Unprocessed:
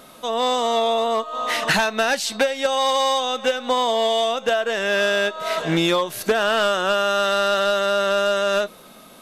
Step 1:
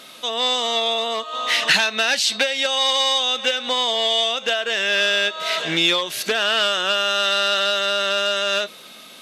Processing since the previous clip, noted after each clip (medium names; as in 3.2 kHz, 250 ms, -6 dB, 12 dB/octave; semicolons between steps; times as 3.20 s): in parallel at 0 dB: peak limiter -20 dBFS, peak gain reduction 7.5 dB; on the sum: frequency weighting D; trim -7.5 dB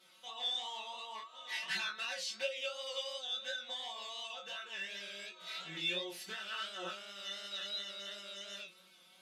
inharmonic resonator 180 Hz, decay 0.26 s, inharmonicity 0.002; chorus 2.8 Hz, delay 19 ms, depth 6.1 ms; trim -6.5 dB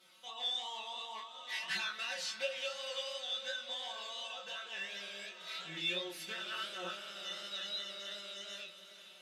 echo that smears into a reverb 457 ms, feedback 54%, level -11.5 dB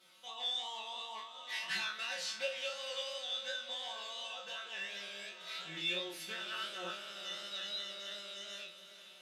spectral sustain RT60 0.31 s; trim -1 dB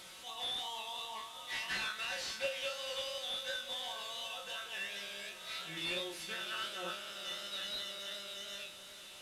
one-bit delta coder 64 kbps, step -47 dBFS; trim +1 dB